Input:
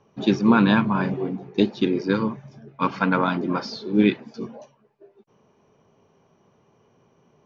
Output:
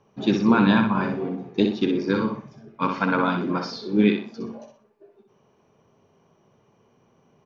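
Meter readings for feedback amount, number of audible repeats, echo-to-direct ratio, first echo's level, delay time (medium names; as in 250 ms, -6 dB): 32%, 3, -5.5 dB, -6.0 dB, 62 ms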